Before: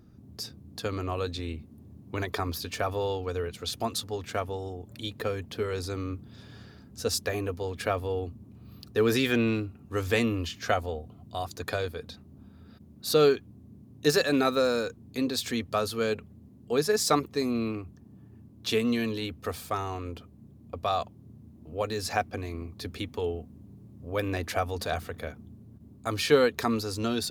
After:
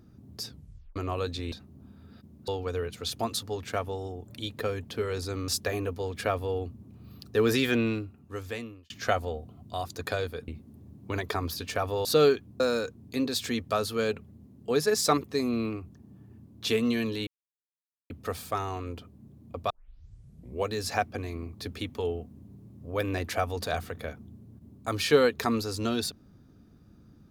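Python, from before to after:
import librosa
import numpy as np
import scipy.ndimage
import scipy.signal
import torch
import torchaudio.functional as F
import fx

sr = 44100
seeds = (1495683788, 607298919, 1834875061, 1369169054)

y = fx.edit(x, sr, fx.tape_stop(start_s=0.49, length_s=0.47),
    fx.swap(start_s=1.52, length_s=1.57, other_s=12.09, other_length_s=0.96),
    fx.cut(start_s=6.09, length_s=1.0),
    fx.fade_out_span(start_s=9.28, length_s=1.23),
    fx.cut(start_s=13.6, length_s=1.02),
    fx.insert_silence(at_s=19.29, length_s=0.83),
    fx.tape_start(start_s=20.89, length_s=0.98), tone=tone)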